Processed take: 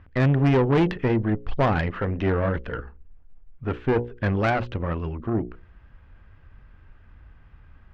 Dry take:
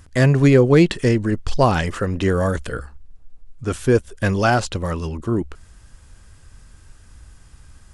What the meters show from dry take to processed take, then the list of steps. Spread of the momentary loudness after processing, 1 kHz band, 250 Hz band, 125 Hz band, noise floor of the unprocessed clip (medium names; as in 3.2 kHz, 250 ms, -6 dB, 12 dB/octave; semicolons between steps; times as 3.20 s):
11 LU, -4.5 dB, -5.0 dB, -4.5 dB, -48 dBFS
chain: low-pass 2.6 kHz 24 dB/octave; hum notches 60/120/180/240/300/360/420/480/540 Hz; valve stage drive 15 dB, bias 0.6